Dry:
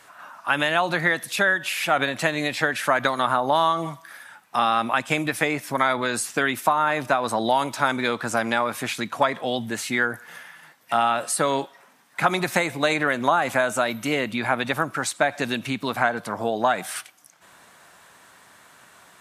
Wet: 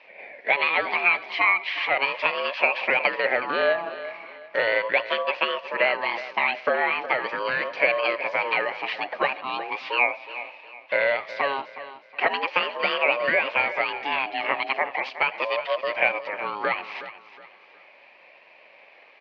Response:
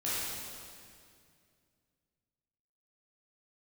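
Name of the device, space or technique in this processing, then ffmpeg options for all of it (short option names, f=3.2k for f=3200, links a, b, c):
voice changer toy: -af "lowpass=f=5.9k:w=0.5412,lowpass=f=5.9k:w=1.3066,aeval=exprs='val(0)*sin(2*PI*670*n/s+670*0.25/0.38*sin(2*PI*0.38*n/s))':c=same,lowpass=f=5.8k:w=0.5412,lowpass=f=5.8k:w=1.3066,highpass=550,equalizer=f=570:t=q:w=4:g=9,equalizer=f=1.4k:t=q:w=4:g=-10,equalizer=f=2.4k:t=q:w=4:g=7,equalizer=f=3.5k:t=q:w=4:g=-6,lowpass=f=3.8k:w=0.5412,lowpass=f=3.8k:w=1.3066,aecho=1:1:367|734|1101:0.2|0.0678|0.0231,volume=2.5dB"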